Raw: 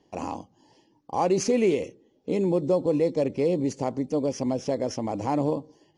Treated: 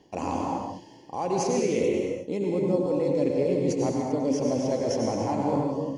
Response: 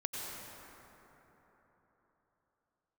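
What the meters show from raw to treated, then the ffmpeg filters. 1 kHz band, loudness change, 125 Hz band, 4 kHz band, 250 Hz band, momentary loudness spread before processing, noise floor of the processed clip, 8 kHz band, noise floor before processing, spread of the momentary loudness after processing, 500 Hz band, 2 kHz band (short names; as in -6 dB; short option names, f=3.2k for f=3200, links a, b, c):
+1.0 dB, 0.0 dB, +0.5 dB, +0.5 dB, +0.5 dB, 12 LU, -50 dBFS, +1.0 dB, -65 dBFS, 7 LU, 0.0 dB, -0.5 dB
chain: -filter_complex "[0:a]bandreject=f=1.2k:w=25,areverse,acompressor=threshold=-33dB:ratio=6,areverse[a];[1:a]atrim=start_sample=2205,afade=t=out:st=0.43:d=0.01,atrim=end_sample=19404[b];[a][b]afir=irnorm=-1:irlink=0,volume=9dB"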